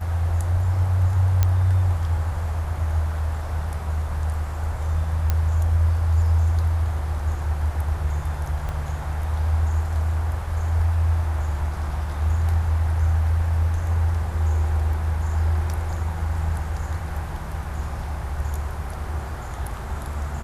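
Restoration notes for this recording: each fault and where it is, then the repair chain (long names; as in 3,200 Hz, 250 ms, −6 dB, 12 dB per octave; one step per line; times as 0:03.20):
0:01.43: click −7 dBFS
0:05.30: click −9 dBFS
0:08.69: click −18 dBFS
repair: click removal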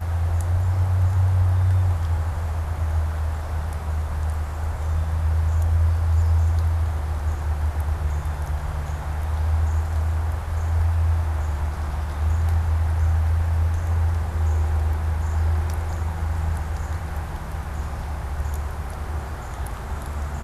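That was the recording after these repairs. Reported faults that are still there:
0:08.69: click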